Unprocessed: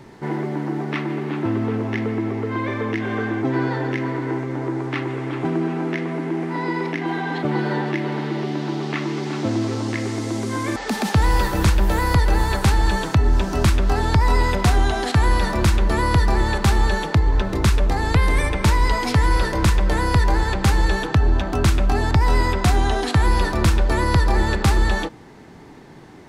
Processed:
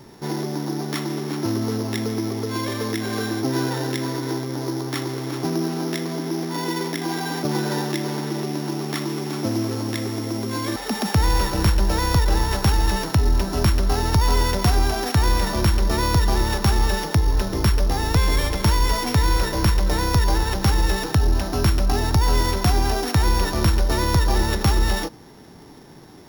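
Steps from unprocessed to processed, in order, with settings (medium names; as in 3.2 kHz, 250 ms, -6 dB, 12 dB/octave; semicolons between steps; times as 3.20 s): sorted samples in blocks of 8 samples; trim -1.5 dB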